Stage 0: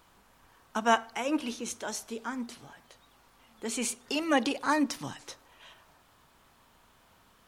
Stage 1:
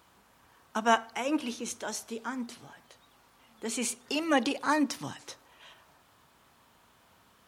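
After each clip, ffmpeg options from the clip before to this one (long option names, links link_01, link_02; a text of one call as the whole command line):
ffmpeg -i in.wav -af "highpass=66" out.wav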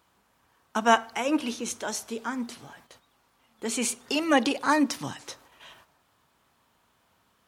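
ffmpeg -i in.wav -af "agate=range=-9dB:threshold=-58dB:ratio=16:detection=peak,volume=4dB" out.wav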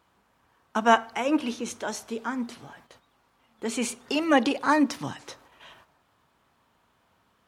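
ffmpeg -i in.wav -af "highshelf=frequency=4200:gain=-8,volume=1.5dB" out.wav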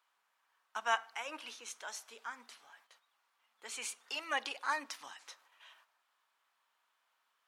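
ffmpeg -i in.wav -af "highpass=1100,volume=-8dB" out.wav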